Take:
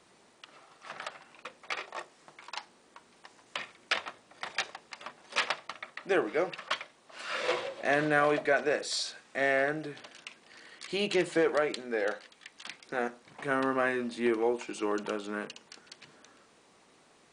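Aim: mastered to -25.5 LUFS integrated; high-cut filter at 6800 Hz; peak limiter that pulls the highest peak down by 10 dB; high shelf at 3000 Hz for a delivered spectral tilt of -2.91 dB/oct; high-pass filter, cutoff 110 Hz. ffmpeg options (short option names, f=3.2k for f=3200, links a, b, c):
-af "highpass=110,lowpass=6.8k,highshelf=f=3k:g=6,volume=9dB,alimiter=limit=-12.5dB:level=0:latency=1"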